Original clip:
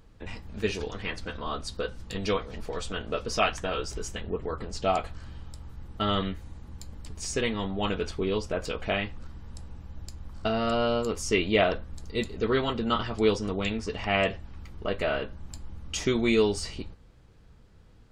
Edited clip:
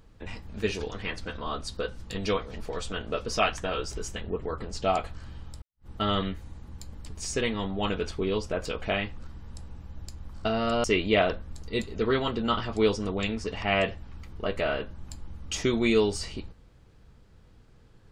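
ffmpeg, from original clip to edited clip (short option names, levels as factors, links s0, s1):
-filter_complex "[0:a]asplit=3[s0][s1][s2];[s0]atrim=end=5.62,asetpts=PTS-STARTPTS,afade=t=out:st=5.616:d=0.004:c=hsin[s3];[s1]atrim=start=5.62:end=10.842,asetpts=PTS-STARTPTS,afade=t=in:d=0.25:c=exp[s4];[s2]atrim=start=11.258[s5];[s3][s4]concat=n=2:v=0:a=1[s6];[s6][s5]acrossfade=d=0.004:c1=hsin:c2=hsin"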